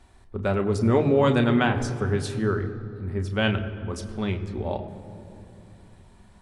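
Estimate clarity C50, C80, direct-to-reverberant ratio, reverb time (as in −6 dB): 11.0 dB, 11.5 dB, 5.0 dB, 2.8 s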